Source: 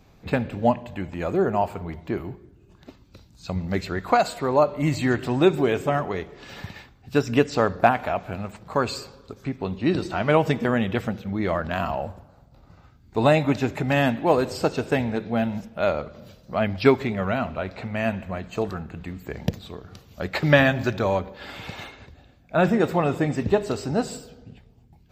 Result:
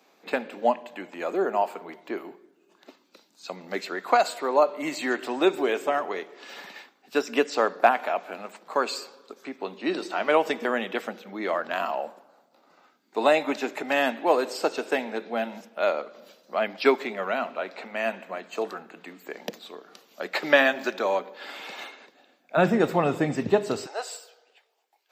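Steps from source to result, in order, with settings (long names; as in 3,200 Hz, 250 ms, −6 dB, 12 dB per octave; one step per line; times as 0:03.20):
Bessel high-pass filter 410 Hz, order 8, from 0:22.56 190 Hz, from 0:23.85 810 Hz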